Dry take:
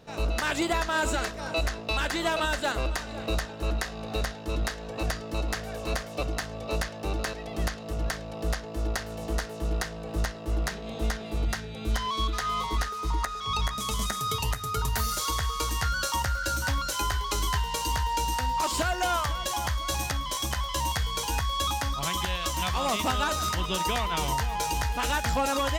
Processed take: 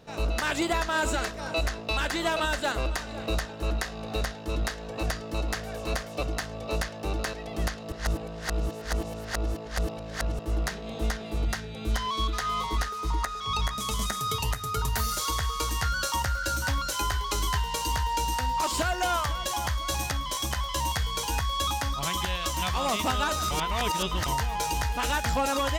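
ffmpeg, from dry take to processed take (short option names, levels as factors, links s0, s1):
-filter_complex "[0:a]asplit=5[s0][s1][s2][s3][s4];[s0]atrim=end=7.922[s5];[s1]atrim=start=7.918:end=10.392,asetpts=PTS-STARTPTS,areverse[s6];[s2]atrim=start=10.388:end=23.512[s7];[s3]atrim=start=23.508:end=24.262,asetpts=PTS-STARTPTS,areverse[s8];[s4]atrim=start=24.258[s9];[s5][s6]acrossfade=d=0.004:c1=hsin:c2=hsin[s10];[s10][s7]acrossfade=d=0.004:c1=hsin:c2=hsin[s11];[s11][s8]acrossfade=d=0.004:c1=hsin:c2=hsin[s12];[s12][s9]acrossfade=d=0.004:c1=hsin:c2=hsin"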